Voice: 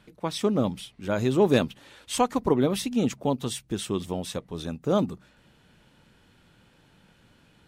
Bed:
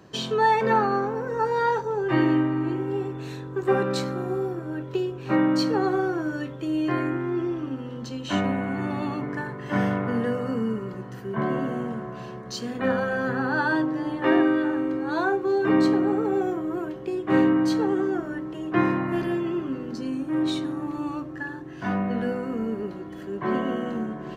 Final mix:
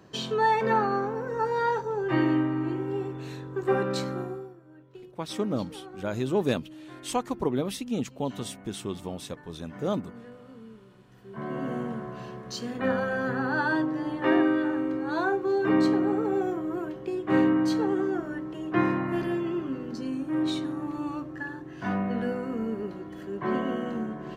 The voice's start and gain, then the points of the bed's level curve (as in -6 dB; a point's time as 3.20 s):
4.95 s, -5.0 dB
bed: 4.21 s -3 dB
4.59 s -20.5 dB
11.03 s -20.5 dB
11.71 s -2.5 dB